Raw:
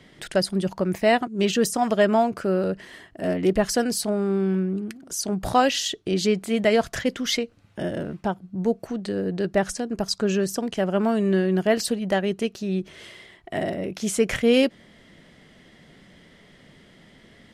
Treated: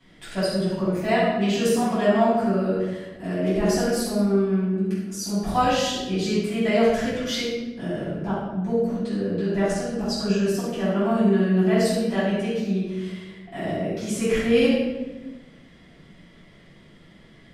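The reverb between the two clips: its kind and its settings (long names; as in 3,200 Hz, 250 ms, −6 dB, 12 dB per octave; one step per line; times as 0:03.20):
rectangular room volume 660 cubic metres, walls mixed, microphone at 8.6 metres
level −16 dB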